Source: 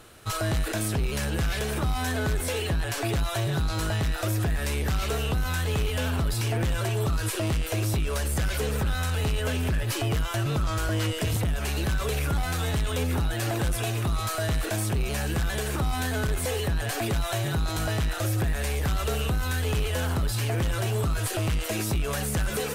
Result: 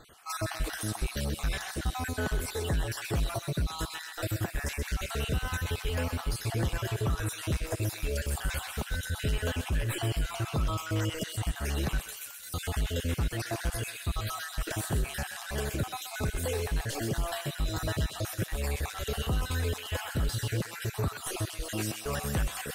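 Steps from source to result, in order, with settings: random holes in the spectrogram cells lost 48%; 11.99–12.54 s: differentiator; thinning echo 128 ms, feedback 63%, high-pass 1.1 kHz, level -6.5 dB; trim -2.5 dB

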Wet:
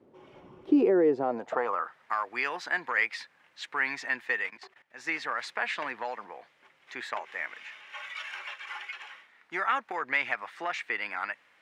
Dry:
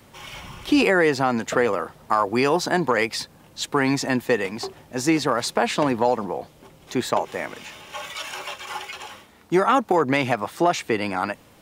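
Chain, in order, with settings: 4.50–5.07 s: level held to a coarse grid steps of 16 dB; band-pass sweep 370 Hz -> 1.9 kHz, 1.11–2.01 s

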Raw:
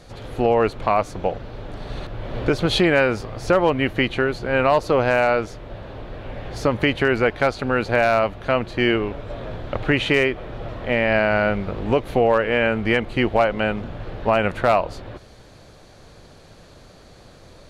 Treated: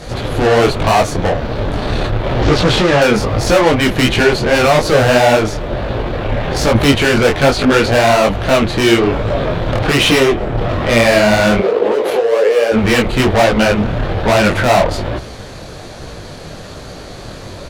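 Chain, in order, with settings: 2.42–3.02 s: one-bit delta coder 32 kbps, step -33 dBFS; 10.18–10.58 s: treble shelf 2.1 kHz -10 dB; valve stage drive 27 dB, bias 0.55; 11.59–12.72 s: resonant high-pass 450 Hz, resonance Q 4.9; speakerphone echo 270 ms, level -23 dB; loudness maximiser +24 dB; detune thickener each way 41 cents; trim -1.5 dB

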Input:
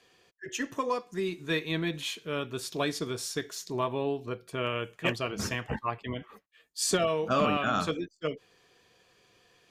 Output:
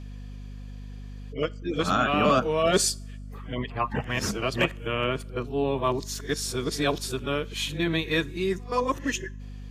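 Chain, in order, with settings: reverse the whole clip; two-slope reverb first 0.39 s, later 1.7 s, from -21 dB, DRR 18.5 dB; hum 50 Hz, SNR 11 dB; trim +4.5 dB

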